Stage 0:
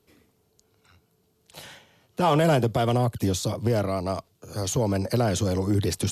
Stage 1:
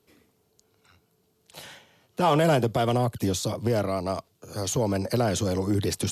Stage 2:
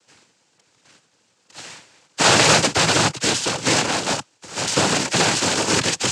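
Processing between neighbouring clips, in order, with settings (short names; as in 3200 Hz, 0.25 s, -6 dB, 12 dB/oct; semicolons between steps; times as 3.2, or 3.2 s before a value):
low shelf 91 Hz -7 dB
spectral contrast lowered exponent 0.3; noise vocoder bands 8; gain +8 dB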